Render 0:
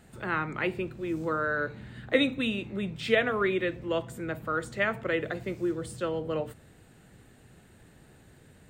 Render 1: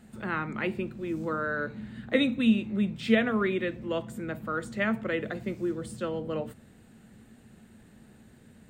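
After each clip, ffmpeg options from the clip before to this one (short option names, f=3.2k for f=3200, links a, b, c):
-af "equalizer=f=220:t=o:w=0.29:g=14.5,volume=-2dB"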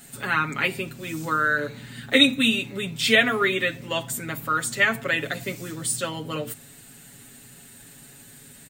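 -af "crystalizer=i=8:c=0,aecho=1:1:7.2:0.88"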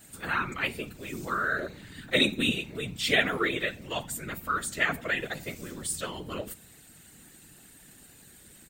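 -af "afftfilt=real='hypot(re,im)*cos(2*PI*random(0))':imag='hypot(re,im)*sin(2*PI*random(1))':win_size=512:overlap=0.75"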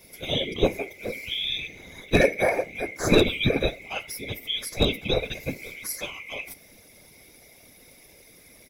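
-af "afftfilt=real='real(if(lt(b,920),b+92*(1-2*mod(floor(b/92),2)),b),0)':imag='imag(if(lt(b,920),b+92*(1-2*mod(floor(b/92),2)),b),0)':win_size=2048:overlap=0.75,volume=16dB,asoftclip=hard,volume=-16dB,lowshelf=f=700:t=q:w=1.5:g=11.5"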